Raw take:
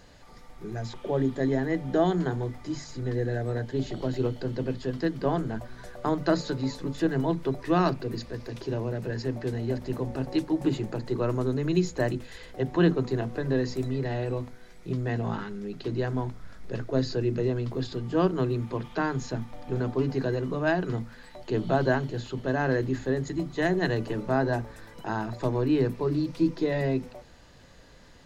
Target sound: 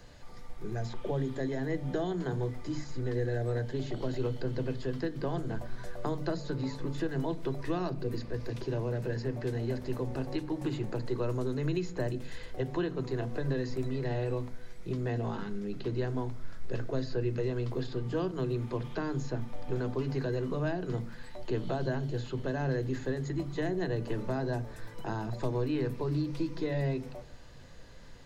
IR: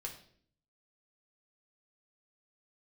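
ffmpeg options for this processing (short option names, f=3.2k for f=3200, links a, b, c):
-filter_complex "[0:a]acrossover=split=260|790|2800[a][b][c][d];[a]acompressor=threshold=-37dB:ratio=4[e];[b]acompressor=threshold=-33dB:ratio=4[f];[c]acompressor=threshold=-43dB:ratio=4[g];[d]acompressor=threshold=-50dB:ratio=4[h];[e][f][g][h]amix=inputs=4:normalize=0,asplit=2[i][j];[1:a]atrim=start_sample=2205,lowshelf=f=300:g=11.5[k];[j][k]afir=irnorm=-1:irlink=0,volume=-8dB[l];[i][l]amix=inputs=2:normalize=0,volume=-3.5dB"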